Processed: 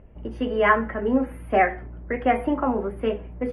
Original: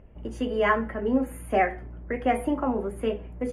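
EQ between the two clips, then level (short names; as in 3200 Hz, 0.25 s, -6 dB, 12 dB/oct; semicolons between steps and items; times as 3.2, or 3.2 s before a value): dynamic EQ 1500 Hz, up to +4 dB, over -39 dBFS, Q 0.71; running mean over 6 samples; +2.0 dB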